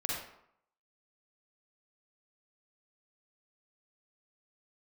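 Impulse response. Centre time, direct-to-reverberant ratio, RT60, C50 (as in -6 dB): 62 ms, -4.5 dB, 0.70 s, -1.0 dB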